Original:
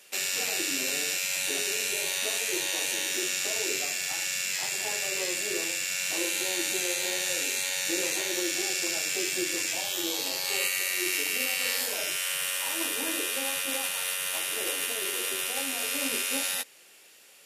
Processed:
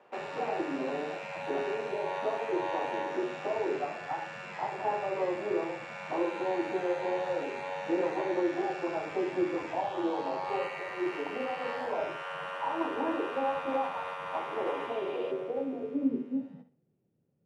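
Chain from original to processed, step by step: low-pass sweep 920 Hz -> 150 Hz, 14.82–16.85; flutter echo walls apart 11 m, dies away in 0.33 s; spectral repair 14.75–15.29, 2300–5000 Hz before; gain +3 dB

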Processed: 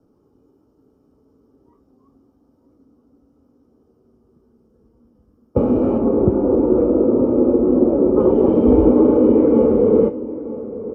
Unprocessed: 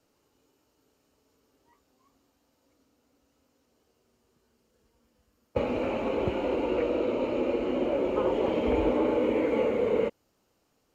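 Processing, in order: 5.98–8.2 Bessel low-pass 1500 Hz, order 4; outdoor echo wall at 160 m, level -14 dB; reverb RT60 0.40 s, pre-delay 3 ms, DRR 16 dB; gain -2.5 dB

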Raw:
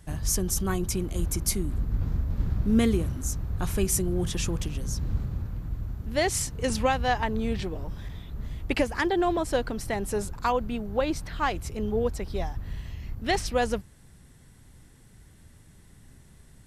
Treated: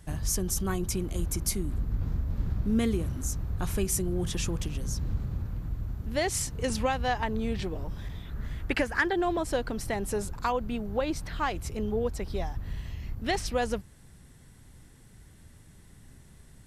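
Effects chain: 8.25–9.13 bell 1600 Hz +9.5 dB 0.67 oct; compressor 1.5:1, threshold -29 dBFS, peak gain reduction 5 dB

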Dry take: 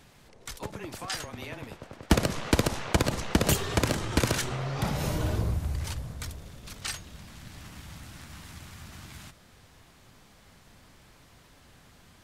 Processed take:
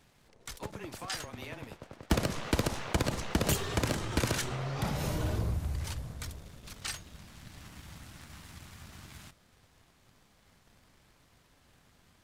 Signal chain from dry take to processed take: sample leveller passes 1; gain -7 dB

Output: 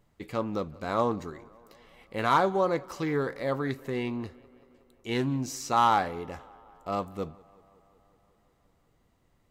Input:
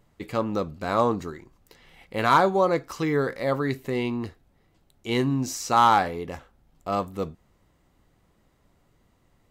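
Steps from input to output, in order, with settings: tape echo 0.185 s, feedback 76%, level -23 dB, low-pass 3800 Hz; Doppler distortion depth 0.11 ms; gain -4.5 dB

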